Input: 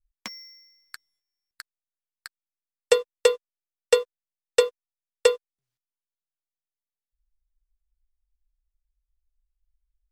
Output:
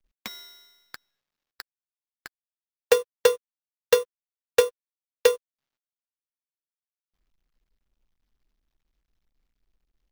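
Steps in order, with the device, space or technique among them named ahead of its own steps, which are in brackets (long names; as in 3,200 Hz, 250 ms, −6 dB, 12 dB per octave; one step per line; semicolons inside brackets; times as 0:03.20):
early companding sampler (sample-rate reduction 9,300 Hz, jitter 0%; log-companded quantiser 8 bits)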